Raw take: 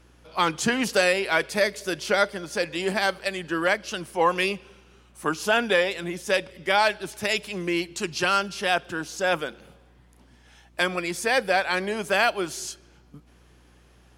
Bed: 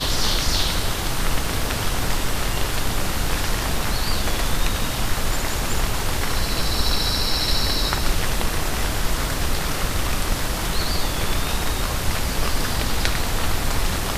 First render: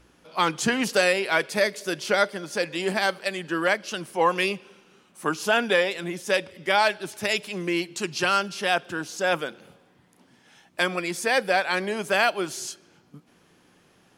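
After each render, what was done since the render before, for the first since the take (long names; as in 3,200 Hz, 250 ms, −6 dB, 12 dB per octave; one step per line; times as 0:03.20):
hum removal 60 Hz, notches 2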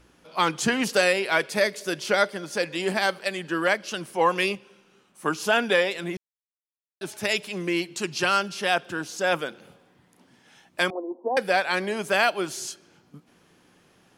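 0:04.55–0:05.25: tuned comb filter 66 Hz, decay 0.16 s, mix 70%
0:06.17–0:07.01: silence
0:10.90–0:11.37: Chebyshev band-pass filter 240–1,000 Hz, order 5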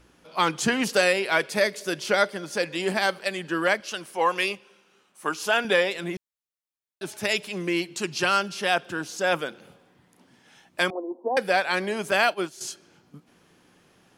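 0:03.80–0:05.65: low-shelf EQ 270 Hz −12 dB
0:12.11–0:12.61: downward expander −28 dBFS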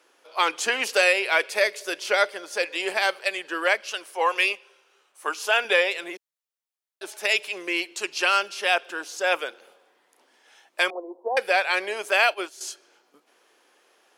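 high-pass filter 400 Hz 24 dB per octave
dynamic equaliser 2,500 Hz, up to +6 dB, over −40 dBFS, Q 2.6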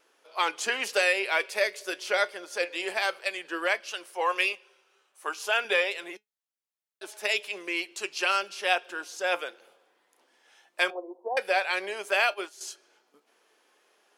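pitch vibrato 1.4 Hz 11 cents
flanger 0.15 Hz, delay 4.5 ms, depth 1.5 ms, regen +79%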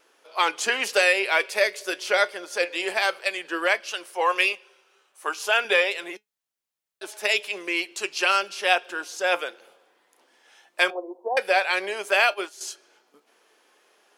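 level +4.5 dB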